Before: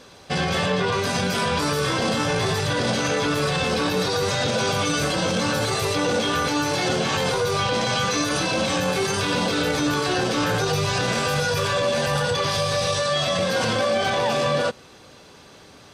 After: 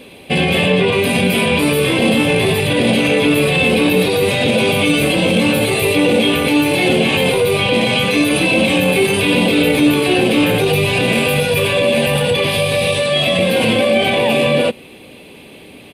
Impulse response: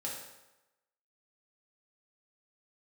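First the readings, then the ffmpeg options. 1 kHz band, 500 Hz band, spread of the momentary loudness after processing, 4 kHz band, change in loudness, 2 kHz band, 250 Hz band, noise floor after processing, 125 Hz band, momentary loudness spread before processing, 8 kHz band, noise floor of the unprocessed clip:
+2.0 dB, +9.0 dB, 2 LU, +7.0 dB, +8.5 dB, +8.5 dB, +11.5 dB, -39 dBFS, +7.0 dB, 1 LU, +2.5 dB, -47 dBFS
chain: -af "firequalizer=gain_entry='entry(120,0);entry(230,8);entry(1400,-10);entry(2400,11);entry(5800,-16);entry(9700,9)':delay=0.05:min_phase=1,volume=5dB"

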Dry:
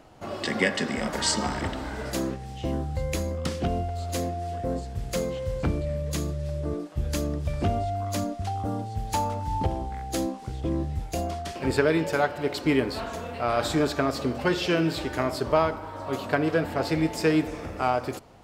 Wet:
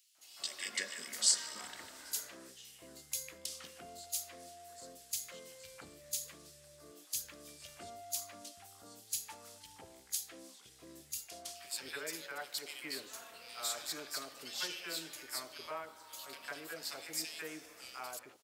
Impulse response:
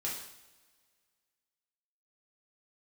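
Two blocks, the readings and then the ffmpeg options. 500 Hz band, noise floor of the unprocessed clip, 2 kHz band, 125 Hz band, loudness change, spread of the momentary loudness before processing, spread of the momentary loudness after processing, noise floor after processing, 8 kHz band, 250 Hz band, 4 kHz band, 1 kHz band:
-24.0 dB, -38 dBFS, -14.0 dB, -35.5 dB, -12.0 dB, 8 LU, 15 LU, -59 dBFS, 0.0 dB, -28.0 dB, -6.0 dB, -20.5 dB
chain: -filter_complex "[0:a]aderivative,acrossover=split=830|2500[a][b][c];[b]adelay=150[d];[a]adelay=180[e];[e][d][c]amix=inputs=3:normalize=0"

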